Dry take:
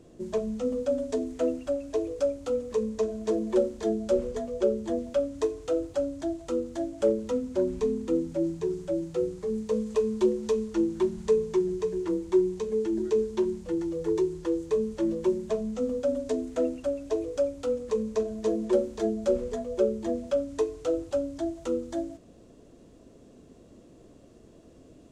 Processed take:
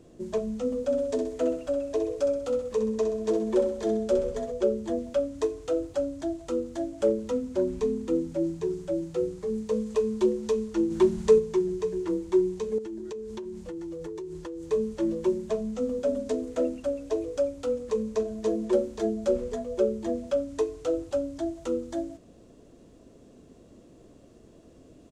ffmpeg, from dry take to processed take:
-filter_complex "[0:a]asettb=1/sr,asplit=3[s0][s1][s2];[s0]atrim=end=0.784[s3];[s1]atrim=start=0.78:end=4.52,asetpts=PTS-STARTPTS,afade=t=in:d=0.004:c=qsin,afade=t=out:st=3.736:d=0.004:c=qsin,aecho=1:1:64|128|192|256|320|384:0.398|0.191|0.0917|0.044|0.0211|0.0101,atrim=end_sample=164934[s4];[s2]atrim=start=4.516[s5];[s3][s4]acrossfade=d=0.004:c1=hsin:c2=qsin[s6];[s6][s5]acrossfade=d=0.004:c1=qsin:c2=hsin,asplit=3[s7][s8][s9];[s7]afade=t=out:st=10.9:d=0.02[s10];[s8]acontrast=29,afade=t=in:st=10.9:d=0.02,afade=t=out:st=11.38:d=0.02[s11];[s9]afade=t=in:st=11.38:d=0.02[s12];[s10][s11][s12]amix=inputs=3:normalize=0,asettb=1/sr,asplit=3[s13][s14][s15];[s13]atrim=end=12.784[s16];[s14]atrim=start=12.78:end=14.65,asetpts=PTS-STARTPTS,afade=t=in:d=0.004:c=qsin,afade=t=out:st=1.866:d=0.004:c=qsin,acompressor=threshold=0.0224:ratio=16:attack=3.2:release=140:knee=1:detection=peak[s17];[s15]atrim=start=14.646[s18];[s16][s17]acrossfade=d=0.004:c1=hsin:c2=qsin[s19];[s19][s18]acrossfade=d=0.004:c1=qsin:c2=hsin,asplit=2[s20][s21];[s21]afade=t=in:st=15.43:d=0.01,afade=t=out:st=16.14:d=0.01,aecho=0:1:540|1080|1620:0.266073|0.0665181|0.0166295[s22];[s20][s22]amix=inputs=2:normalize=0"

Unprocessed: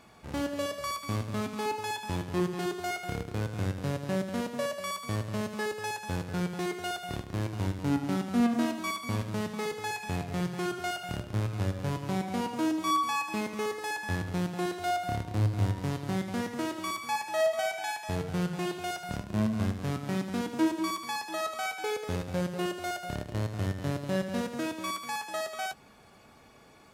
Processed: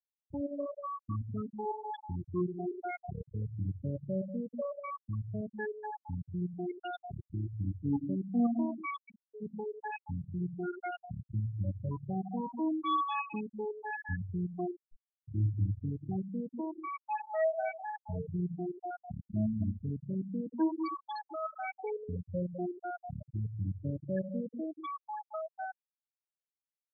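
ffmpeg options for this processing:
-filter_complex "[0:a]asplit=3[s0][s1][s2];[s0]afade=t=out:st=8.98:d=0.02[s3];[s1]highpass=370,lowpass=4700,afade=t=in:st=8.98:d=0.02,afade=t=out:st=9.4:d=0.02[s4];[s2]afade=t=in:st=9.4:d=0.02[s5];[s3][s4][s5]amix=inputs=3:normalize=0,asettb=1/sr,asplit=3[s6][s7][s8];[s6]atrim=end=14.764[s9];[s7]atrim=start=14.76:end=15.24,asetpts=PTS-STARTPTS,afade=t=in:d=0.004:c=qsin,afade=t=out:st=0.476:d=0.004:c=qsin,aeval=exprs='(tanh(141*val(0)+0.65)-tanh(0.65))/141':c=same[s10];[s8]atrim=start=15.236[s11];[s9][s10]acrossfade=d=0.004:c1=hsin:c2=qsin[s12];[s12][s11]acrossfade=d=0.004:c1=qsin:c2=hsin,afftfilt=real='re*gte(hypot(re,im),0.1)':imag='im*gte(hypot(re,im),0.1)':win_size=1024:overlap=0.75,volume=0.708"

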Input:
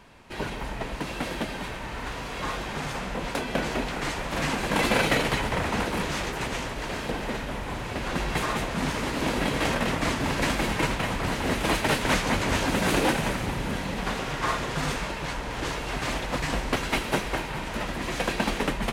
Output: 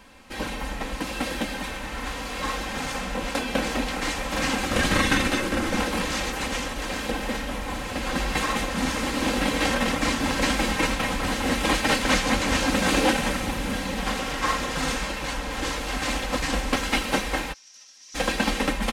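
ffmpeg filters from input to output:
-filter_complex "[0:a]asettb=1/sr,asplit=3[s0][s1][s2];[s0]atrim=end=4.654[s3];[s1]atrim=start=4.65:end=5.77,asetpts=PTS-STARTPTS,afade=t=in:d=0.004:c=qsin,afade=t=out:st=1.116:d=0.004:c=qsin,afreqshift=-410[s4];[s2]atrim=start=5.766[s5];[s3][s4]acrossfade=d=0.004:c1=hsin:c2=qsin[s6];[s6][s5]acrossfade=d=0.004:c1=qsin:c2=hsin,asplit=3[s7][s8][s9];[s7]afade=t=out:st=17.52:d=0.02[s10];[s8]bandpass=f=5700:t=q:w=8.9,afade=t=in:st=17.52:d=0.02,afade=t=out:st=18.14:d=0.02[s11];[s9]afade=t=in:st=18.14:d=0.02[s12];[s10][s11][s12]amix=inputs=3:normalize=0,acrossover=split=8400[s13][s14];[s14]acompressor=threshold=0.00355:ratio=4:attack=1:release=60[s15];[s13][s15]amix=inputs=2:normalize=0,highshelf=f=3800:g=6,aecho=1:1:3.8:0.61"

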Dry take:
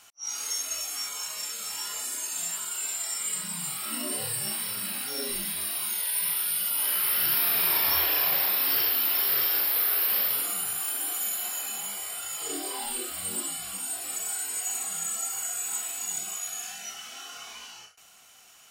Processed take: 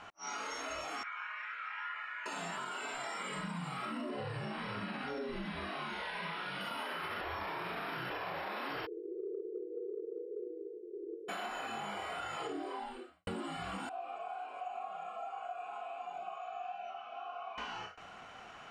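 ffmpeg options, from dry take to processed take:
-filter_complex "[0:a]asettb=1/sr,asplit=3[s0][s1][s2];[s0]atrim=end=1.034[s3];[s1]atrim=start=1.03:end=2.26,asetpts=PTS-STARTPTS,afade=t=in:d=0.004:c=qsin,afade=t=out:st=1.226:d=0.004:c=qsin,asuperpass=centerf=1800:order=4:qfactor=1.6[s4];[s2]atrim=start=2.256[s5];[s3][s4]acrossfade=d=0.004:c1=hsin:c2=qsin[s6];[s6][s5]acrossfade=d=0.004:c1=qsin:c2=hsin,asettb=1/sr,asplit=3[s7][s8][s9];[s7]atrim=end=4.094[s10];[s8]atrim=start=4.09:end=6.61,asetpts=PTS-STARTPTS,afade=t=in:d=0.004:c=qsin,afade=t=out:st=2.516:d=0.004:c=qsin,acrossover=split=6300[s11][s12];[s12]acompressor=threshold=0.00891:ratio=4:attack=1:release=60[s13];[s11][s13]amix=inputs=2:normalize=0[s14];[s9]atrim=start=6.606[s15];[s10][s14]acrossfade=d=0.004:c1=hsin:c2=qsin[s16];[s16][s15]acrossfade=d=0.004:c1=qsin:c2=hsin,asplit=3[s17][s18][s19];[s17]afade=t=out:st=8.85:d=0.02[s20];[s18]asuperpass=centerf=400:order=12:qfactor=2.6,afade=t=in:st=8.85:d=0.02,afade=t=out:st=11.28:d=0.02[s21];[s19]afade=t=in:st=11.28:d=0.02[s22];[s20][s21][s22]amix=inputs=3:normalize=0,asettb=1/sr,asplit=3[s23][s24][s25];[s23]atrim=end=13.894[s26];[s24]atrim=start=13.89:end=17.58,asetpts=PTS-STARTPTS,afade=t=in:d=0.004:c=qsin,afade=t=out:st=3.686:d=0.004:c=qsin,asplit=3[s27][s28][s29];[s27]bandpass=f=730:t=q:w=8,volume=1[s30];[s28]bandpass=f=1090:t=q:w=8,volume=0.501[s31];[s29]bandpass=f=2440:t=q:w=8,volume=0.355[s32];[s30][s31][s32]amix=inputs=3:normalize=0[s33];[s25]atrim=start=17.576[s34];[s26][s33]acrossfade=d=0.004:c1=hsin:c2=qsin[s35];[s35][s34]acrossfade=d=0.004:c1=qsin:c2=hsin,asplit=4[s36][s37][s38][s39];[s36]atrim=end=7.212[s40];[s37]atrim=start=7.208:end=8.102,asetpts=PTS-STARTPTS,areverse[s41];[s38]atrim=start=8.098:end=13.27,asetpts=PTS-STARTPTS,afade=t=out:st=4.362:d=0.81:c=qua[s42];[s39]atrim=start=13.27,asetpts=PTS-STARTPTS,afade=t=in:d=0.004:c=hsin[s43];[s40][s41]acrossfade=d=0.004:c1=hsin:c2=hsin[s44];[s42][s43]concat=n=2:v=0:a=1[s45];[s44][s45]acrossfade=d=0.004:c1=hsin:c2=hsin,lowpass=1500,alimiter=level_in=3.35:limit=0.0631:level=0:latency=1,volume=0.299,acompressor=threshold=0.00316:ratio=6,volume=4.22"

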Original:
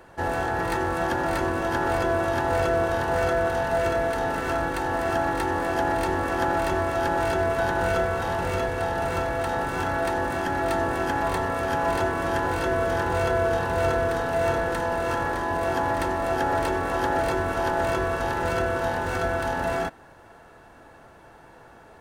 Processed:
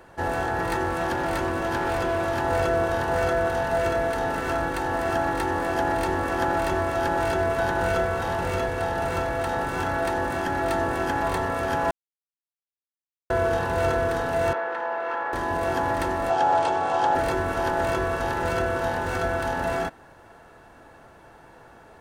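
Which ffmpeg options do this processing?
-filter_complex "[0:a]asettb=1/sr,asplit=3[s0][s1][s2];[s0]atrim=end=0.884[s3];[s1]atrim=start=0.88:end=2.41,asetpts=PTS-STARTPTS,afade=t=in:d=0.004:c=qsin,afade=t=out:st=1.526:d=0.004:c=qsin,volume=11.2,asoftclip=hard,volume=0.0891[s4];[s2]atrim=start=2.406[s5];[s3][s4]acrossfade=d=0.004:c1=hsin:c2=qsin[s6];[s6][s5]acrossfade=d=0.004:c1=qsin:c2=hsin,asettb=1/sr,asplit=3[s7][s8][s9];[s7]atrim=end=14.534[s10];[s8]atrim=start=14.53:end=15.33,asetpts=PTS-STARTPTS,afade=t=in:d=0.004:c=qsin,afade=t=out:st=0.796:d=0.004:c=qsin,highpass=580,lowpass=2200[s11];[s9]atrim=start=15.326[s12];[s10][s11]acrossfade=d=0.004:c1=hsin:c2=qsin[s13];[s13][s12]acrossfade=d=0.004:c1=qsin:c2=hsin,asettb=1/sr,asplit=3[s14][s15][s16];[s14]atrim=end=16.304[s17];[s15]atrim=start=16.3:end=17.15,asetpts=PTS-STARTPTS,afade=t=in:d=0.004:c=qsin,afade=t=out:st=0.846:d=0.004:c=qsin,highpass=150,equalizer=f=240:t=q:w=4:g=-10,equalizer=f=380:t=q:w=4:g=-4,equalizer=f=780:t=q:w=4:g=9,equalizer=f=1900:t=q:w=4:g=-6,equalizer=f=3200:t=q:w=4:g=3,lowpass=f=8200:w=0.5412,lowpass=f=8200:w=1.3066[s18];[s16]atrim=start=17.146[s19];[s17][s18]acrossfade=d=0.004:c1=hsin:c2=qsin[s20];[s20][s19]acrossfade=d=0.004:c1=qsin:c2=hsin,asplit=3[s21][s22][s23];[s21]atrim=end=11.91,asetpts=PTS-STARTPTS,afade=t=out:st=11.906:d=0.004:c=hsin[s24];[s22]atrim=start=11.91:end=13.3,asetpts=PTS-STARTPTS,volume=0[s25];[s23]atrim=start=13.3,asetpts=PTS-STARTPTS,afade=t=in:d=0.004:c=hsin[s26];[s24][s25][s26]concat=n=3:v=0:a=1"

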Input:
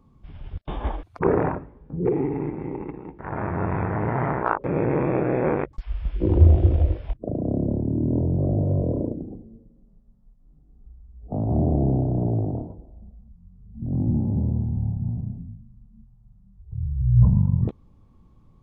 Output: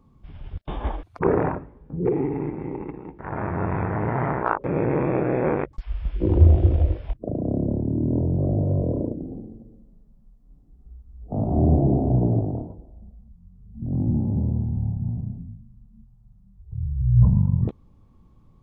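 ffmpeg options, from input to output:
-filter_complex "[0:a]asettb=1/sr,asplit=3[s0][s1][s2];[s0]atrim=end=9.184[s3];[s1]atrim=start=9.18:end=12.42,asetpts=PTS-STARTPTS,afade=t=in:d=0.004:c=qsin,afade=t=out:st=3.236:d=0.004:c=qsin,aecho=1:1:50|112.5|190.6|288.3|410.4:0.631|0.398|0.251|0.158|0.1,atrim=end_sample=142884[s4];[s2]atrim=start=12.416[s5];[s3][s4]acrossfade=d=0.004:c1=hsin:c2=qsin[s6];[s6][s5]acrossfade=d=0.004:c1=qsin:c2=hsin"

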